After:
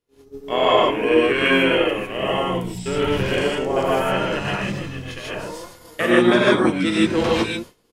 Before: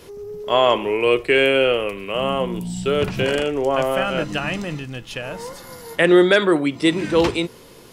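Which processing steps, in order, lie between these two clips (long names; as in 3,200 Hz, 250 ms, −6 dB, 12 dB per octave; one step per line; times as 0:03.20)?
reverb whose tail is shaped and stops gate 180 ms rising, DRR −5.5 dB
pitch-shifted copies added −7 semitones −5 dB
downward expander −23 dBFS
level −7 dB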